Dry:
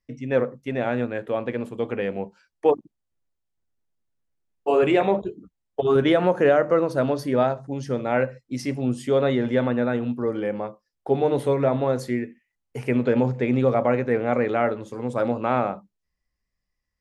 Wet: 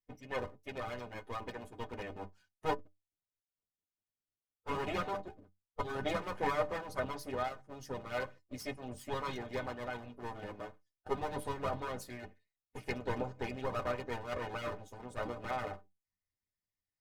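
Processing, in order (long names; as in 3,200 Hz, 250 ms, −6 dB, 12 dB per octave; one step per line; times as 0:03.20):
lower of the sound and its delayed copy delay 7.9 ms
stiff-string resonator 90 Hz, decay 0.28 s, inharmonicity 0.03
harmonic and percussive parts rebalanced harmonic −12 dB
level +3.5 dB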